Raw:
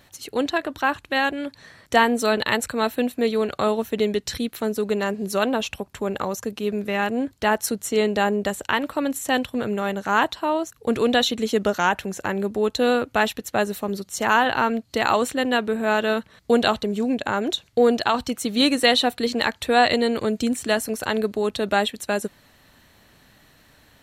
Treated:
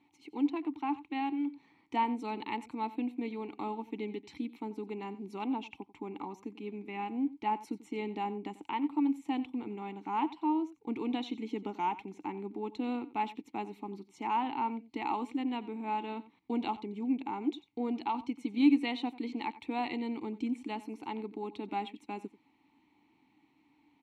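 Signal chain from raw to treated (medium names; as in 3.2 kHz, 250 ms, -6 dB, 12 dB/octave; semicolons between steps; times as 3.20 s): vowel filter u; delay 90 ms -17.5 dB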